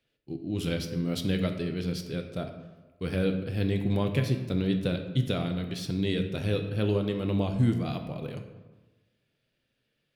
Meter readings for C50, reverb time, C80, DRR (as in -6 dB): 8.0 dB, 1.2 s, 10.0 dB, 5.0 dB